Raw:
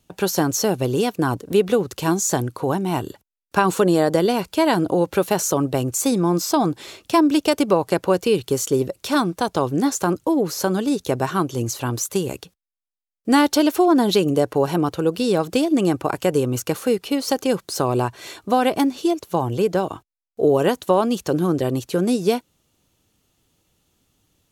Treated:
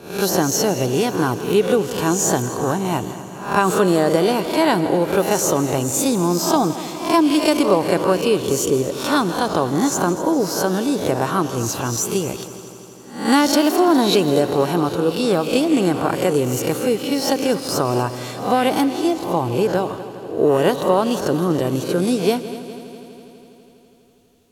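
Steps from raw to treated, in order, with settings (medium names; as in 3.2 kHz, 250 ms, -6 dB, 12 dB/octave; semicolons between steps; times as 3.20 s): reverse spectral sustain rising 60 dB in 0.48 s; on a send: multi-head delay 82 ms, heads second and third, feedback 68%, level -15.5 dB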